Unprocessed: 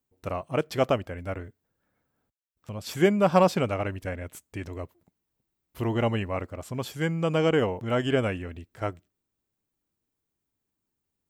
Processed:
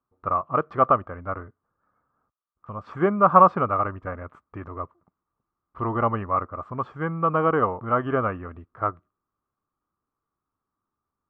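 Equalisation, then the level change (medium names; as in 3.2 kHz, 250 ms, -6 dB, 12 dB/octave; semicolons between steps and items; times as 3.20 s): resonant low-pass 1.2 kHz, resonance Q 9.8; -1.5 dB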